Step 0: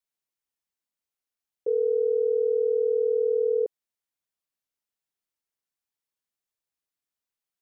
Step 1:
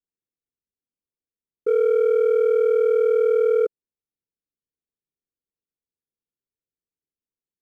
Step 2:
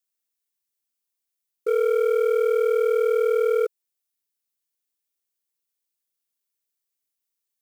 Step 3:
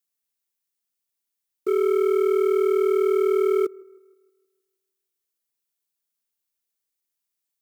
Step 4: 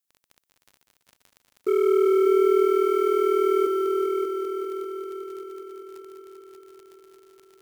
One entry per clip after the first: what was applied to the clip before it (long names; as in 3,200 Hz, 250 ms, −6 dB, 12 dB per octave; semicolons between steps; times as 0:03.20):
Butterworth low-pass 510 Hz 48 dB per octave; leveller curve on the samples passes 1; level +5 dB
spectral tilt +3.5 dB per octave; level +1.5 dB
delay with a band-pass on its return 157 ms, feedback 47%, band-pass 720 Hz, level −23 dB; frequency shifter −58 Hz
surface crackle 11 per second −35 dBFS; echo machine with several playback heads 196 ms, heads all three, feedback 66%, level −8.5 dB